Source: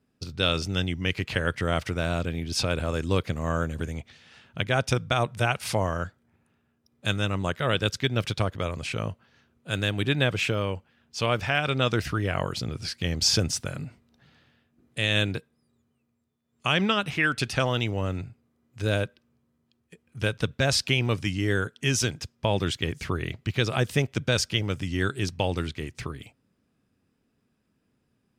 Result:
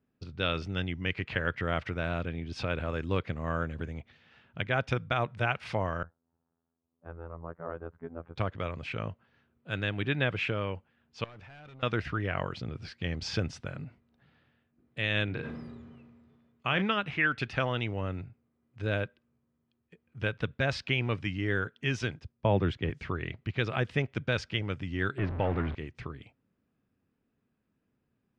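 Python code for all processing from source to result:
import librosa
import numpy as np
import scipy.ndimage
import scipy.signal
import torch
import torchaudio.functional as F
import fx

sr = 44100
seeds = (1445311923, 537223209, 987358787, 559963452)

y = fx.chain(x, sr, fx.lowpass(hz=1100.0, slope=24),
    fx.low_shelf(hz=450.0, db=-8.5),
    fx.robotise(hz=83.3), at=(6.03, 8.36))
y = fx.chain(y, sr, fx.overload_stage(gain_db=27.5),
    fx.level_steps(step_db=22), at=(11.24, 11.83))
y = fx.chain(y, sr, fx.high_shelf(hz=7500.0, db=-11.5),
    fx.doubler(ms=38.0, db=-12.5),
    fx.sustainer(db_per_s=29.0), at=(15.24, 16.82))
y = fx.chain(y, sr, fx.tilt_shelf(db=5.5, hz=1500.0),
    fx.band_widen(depth_pct=40), at=(22.19, 22.9))
y = fx.chain(y, sr, fx.zero_step(step_db=-24.5),
    fx.lowpass(hz=1700.0, slope=12), at=(25.18, 25.75))
y = scipy.signal.sosfilt(scipy.signal.butter(2, 2800.0, 'lowpass', fs=sr, output='sos'), y)
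y = fx.dynamic_eq(y, sr, hz=2000.0, q=0.9, threshold_db=-39.0, ratio=4.0, max_db=4)
y = y * librosa.db_to_amplitude(-5.5)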